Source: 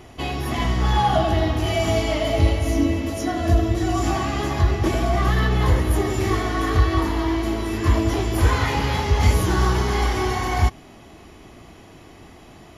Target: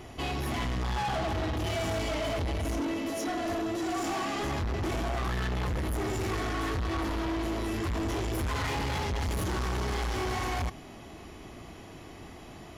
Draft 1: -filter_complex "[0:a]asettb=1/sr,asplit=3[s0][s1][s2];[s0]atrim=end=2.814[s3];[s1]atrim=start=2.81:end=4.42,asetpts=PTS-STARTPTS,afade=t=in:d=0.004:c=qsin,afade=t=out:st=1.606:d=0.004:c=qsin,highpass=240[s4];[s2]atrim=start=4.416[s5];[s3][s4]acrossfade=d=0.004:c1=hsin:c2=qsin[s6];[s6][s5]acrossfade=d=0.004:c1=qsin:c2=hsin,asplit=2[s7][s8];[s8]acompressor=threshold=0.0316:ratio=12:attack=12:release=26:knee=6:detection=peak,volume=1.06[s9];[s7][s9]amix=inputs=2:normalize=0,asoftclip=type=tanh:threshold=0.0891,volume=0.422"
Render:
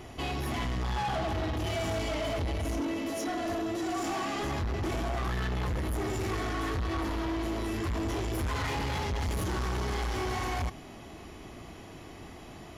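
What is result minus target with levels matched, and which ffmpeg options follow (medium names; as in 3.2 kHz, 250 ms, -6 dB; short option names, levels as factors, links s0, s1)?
compression: peak gain reduction +9 dB
-filter_complex "[0:a]asettb=1/sr,asplit=3[s0][s1][s2];[s0]atrim=end=2.814[s3];[s1]atrim=start=2.81:end=4.42,asetpts=PTS-STARTPTS,afade=t=in:d=0.004:c=qsin,afade=t=out:st=1.606:d=0.004:c=qsin,highpass=240[s4];[s2]atrim=start=4.416[s5];[s3][s4]acrossfade=d=0.004:c1=hsin:c2=qsin[s6];[s6][s5]acrossfade=d=0.004:c1=qsin:c2=hsin,asplit=2[s7][s8];[s8]acompressor=threshold=0.1:ratio=12:attack=12:release=26:knee=6:detection=peak,volume=1.06[s9];[s7][s9]amix=inputs=2:normalize=0,asoftclip=type=tanh:threshold=0.0891,volume=0.422"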